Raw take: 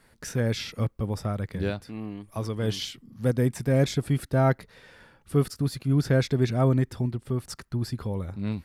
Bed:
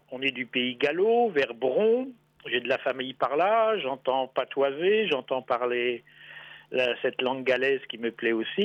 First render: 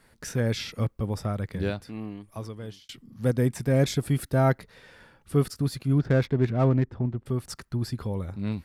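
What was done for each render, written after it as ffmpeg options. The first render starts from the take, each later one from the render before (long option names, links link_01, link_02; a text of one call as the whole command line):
ffmpeg -i in.wav -filter_complex "[0:a]asettb=1/sr,asplit=3[link_01][link_02][link_03];[link_01]atrim=end=3.864[link_04];[link_02]atrim=start=3.86:end=4.52,asetpts=PTS-STARTPTS,afade=type=in:duration=0.004:curve=qsin,afade=type=out:start_time=0.656:duration=0.004:curve=qsin,highshelf=frequency=9900:gain=8[link_05];[link_03]atrim=start=4.516[link_06];[link_04][link_05]acrossfade=duration=0.004:curve1=hsin:curve2=qsin[link_07];[link_07][link_06]acrossfade=duration=0.004:curve1=qsin:curve2=hsin,asettb=1/sr,asplit=3[link_08][link_09][link_10];[link_08]atrim=end=5.984[link_11];[link_09]atrim=start=5.98:end=7.26,asetpts=PTS-STARTPTS,afade=type=in:duration=0.004:curve=qsin,afade=type=out:start_time=1.276:duration=0.004:curve=qsin,adynamicsmooth=sensitivity=4:basefreq=1200[link_12];[link_10]atrim=start=7.256[link_13];[link_11][link_12]acrossfade=duration=0.004:curve1=hsin:curve2=qsin[link_14];[link_14][link_13]acrossfade=duration=0.004:curve1=qsin:curve2=hsin,asplit=2[link_15][link_16];[link_15]atrim=end=2.89,asetpts=PTS-STARTPTS,afade=type=out:start_time=2.01:duration=0.88[link_17];[link_16]atrim=start=2.89,asetpts=PTS-STARTPTS,afade=type=in:duration=0.004:curve=hsin[link_18];[link_17][link_18]concat=n=2:v=0:a=1" out.wav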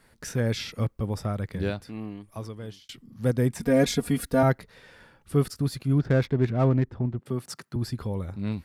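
ffmpeg -i in.wav -filter_complex "[0:a]asettb=1/sr,asplit=3[link_01][link_02][link_03];[link_01]atrim=end=3.604[link_04];[link_02]atrim=start=3.6:end=4.43,asetpts=PTS-STARTPTS,afade=type=in:duration=0.004:curve=qsin,afade=type=out:start_time=0.826:duration=0.004:curve=qsin,aecho=1:1:4.2:0.98,atrim=end_sample=36603[link_05];[link_03]atrim=start=4.426[link_06];[link_04][link_05]acrossfade=duration=0.004:curve1=hsin:curve2=qsin[link_07];[link_07][link_06]acrossfade=duration=0.004:curve1=qsin:curve2=hsin,asettb=1/sr,asplit=3[link_08][link_09][link_10];[link_08]atrim=end=7.194[link_11];[link_09]atrim=start=7.19:end=7.76,asetpts=PTS-STARTPTS,afade=type=in:duration=0.004:curve=qsin,afade=type=out:start_time=0.566:duration=0.004:curve=qsin,highpass=frequency=130:width=0.5412,highpass=frequency=130:width=1.3066[link_12];[link_10]atrim=start=7.756[link_13];[link_11][link_12]acrossfade=duration=0.004:curve1=hsin:curve2=qsin[link_14];[link_14][link_13]acrossfade=duration=0.004:curve1=qsin:curve2=hsin" out.wav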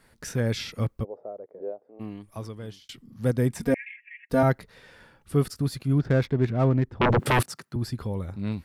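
ffmpeg -i in.wav -filter_complex "[0:a]asplit=3[link_01][link_02][link_03];[link_01]afade=type=out:start_time=1.03:duration=0.02[link_04];[link_02]asuperpass=centerf=530:order=4:qfactor=1.8,afade=type=in:start_time=1.03:duration=0.02,afade=type=out:start_time=1.99:duration=0.02[link_05];[link_03]afade=type=in:start_time=1.99:duration=0.02[link_06];[link_04][link_05][link_06]amix=inputs=3:normalize=0,asettb=1/sr,asplit=3[link_07][link_08][link_09];[link_07]atrim=end=3.744[link_10];[link_08]atrim=start=3.74:end=4.3,asetpts=PTS-STARTPTS,afade=type=in:duration=0.004:curve=qsin,afade=type=out:start_time=0.556:duration=0.004:curve=qsin,asuperpass=centerf=2200:order=12:qfactor=2.2[link_11];[link_09]atrim=start=4.296[link_12];[link_10][link_11]acrossfade=duration=0.004:curve1=hsin:curve2=qsin[link_13];[link_13][link_12]acrossfade=duration=0.004:curve1=qsin:curve2=hsin,asettb=1/sr,asplit=3[link_14][link_15][link_16];[link_14]atrim=end=7.014[link_17];[link_15]atrim=start=7.01:end=7.43,asetpts=PTS-STARTPTS,afade=type=in:duration=0.004:curve=qsin,afade=type=out:start_time=0.416:duration=0.004:curve=qsin,aeval=exprs='0.15*sin(PI/2*7.94*val(0)/0.15)':channel_layout=same[link_18];[link_16]atrim=start=7.426[link_19];[link_17][link_18]acrossfade=duration=0.004:curve1=hsin:curve2=qsin[link_20];[link_20][link_19]acrossfade=duration=0.004:curve1=qsin:curve2=hsin" out.wav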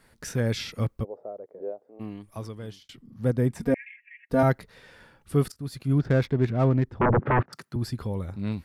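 ffmpeg -i in.wav -filter_complex "[0:a]asettb=1/sr,asplit=3[link_01][link_02][link_03];[link_01]atrim=end=2.834[link_04];[link_02]atrim=start=2.83:end=4.39,asetpts=PTS-STARTPTS,afade=type=in:duration=0.004:curve=qsin,afade=type=out:start_time=1.556:duration=0.004:curve=qsin,highshelf=frequency=2100:gain=-7.5[link_05];[link_03]atrim=start=4.386[link_06];[link_04][link_05]acrossfade=duration=0.004:curve1=hsin:curve2=qsin[link_07];[link_07][link_06]acrossfade=duration=0.004:curve1=qsin:curve2=hsin,asettb=1/sr,asplit=3[link_08][link_09][link_10];[link_08]atrim=end=7.014[link_11];[link_09]atrim=start=7.01:end=7.53,asetpts=PTS-STARTPTS,afade=type=in:duration=0.004:curve=qsin,afade=type=out:start_time=0.516:duration=0.004:curve=qsin,lowpass=frequency=1800:width=0.5412,lowpass=frequency=1800:width=1.3066[link_12];[link_10]atrim=start=7.526[link_13];[link_11][link_12]acrossfade=duration=0.004:curve1=hsin:curve2=qsin[link_14];[link_14][link_13]acrossfade=duration=0.004:curve1=qsin:curve2=hsin,asplit=2[link_15][link_16];[link_15]atrim=end=5.52,asetpts=PTS-STARTPTS,afade=type=out:start_time=5.516:duration=0.004:curve=hsin:silence=0.11885[link_17];[link_16]atrim=start=5.52,asetpts=PTS-STARTPTS,afade=type=in:duration=0.4:silence=0.11885[link_18];[link_17][link_18]concat=n=2:v=0:a=1" out.wav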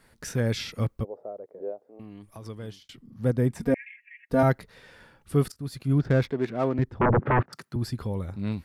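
ffmpeg -i in.wav -filter_complex "[0:a]asettb=1/sr,asplit=3[link_01][link_02][link_03];[link_01]atrim=end=1.874[link_04];[link_02]atrim=start=1.87:end=2.46,asetpts=PTS-STARTPTS,afade=type=in:duration=0.004:curve=qsin,afade=type=out:start_time=0.586:duration=0.004:curve=qsin,acompressor=threshold=-39dB:ratio=5:attack=3.2:release=140:knee=1:detection=peak[link_05];[link_03]atrim=start=2.456[link_06];[link_04][link_05]acrossfade=duration=0.004:curve1=hsin:curve2=qsin[link_07];[link_07][link_06]acrossfade=duration=0.004:curve1=qsin:curve2=hsin,asettb=1/sr,asplit=3[link_08][link_09][link_10];[link_08]atrim=end=6.314[link_11];[link_09]atrim=start=6.31:end=6.79,asetpts=PTS-STARTPTS,afade=type=in:duration=0.004:curve=qsin,afade=type=out:start_time=0.476:duration=0.004:curve=qsin,highpass=260[link_12];[link_10]atrim=start=6.786[link_13];[link_11][link_12]acrossfade=duration=0.004:curve1=hsin:curve2=qsin[link_14];[link_14][link_13]acrossfade=duration=0.004:curve1=qsin:curve2=hsin" out.wav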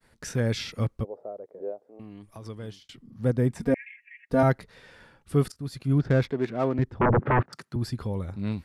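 ffmpeg -i in.wav -af "agate=range=-33dB:threshold=-57dB:ratio=3:detection=peak,lowpass=11000" out.wav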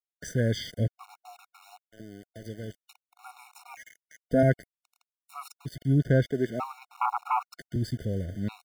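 ffmpeg -i in.wav -af "aeval=exprs='val(0)*gte(abs(val(0)),0.00891)':channel_layout=same,afftfilt=real='re*gt(sin(2*PI*0.53*pts/sr)*(1-2*mod(floor(b*sr/1024/730),2)),0)':imag='im*gt(sin(2*PI*0.53*pts/sr)*(1-2*mod(floor(b*sr/1024/730),2)),0)':win_size=1024:overlap=0.75" out.wav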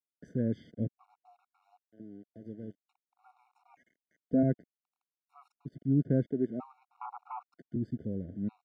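ffmpeg -i in.wav -af "bandpass=frequency=250:width_type=q:width=1.5:csg=0" out.wav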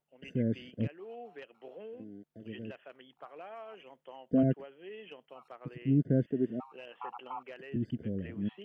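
ffmpeg -i in.wav -i bed.wav -filter_complex "[1:a]volume=-23.5dB[link_01];[0:a][link_01]amix=inputs=2:normalize=0" out.wav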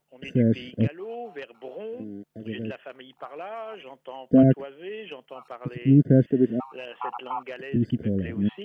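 ffmpeg -i in.wav -af "volume=10dB" out.wav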